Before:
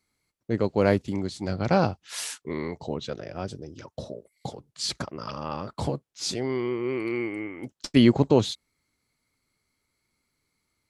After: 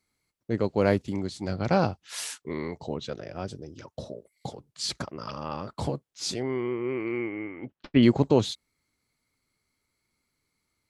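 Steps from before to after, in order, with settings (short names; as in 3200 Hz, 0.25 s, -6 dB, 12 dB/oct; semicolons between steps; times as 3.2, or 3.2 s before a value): 6.42–8.03 LPF 2900 Hz 24 dB/oct; gain -1.5 dB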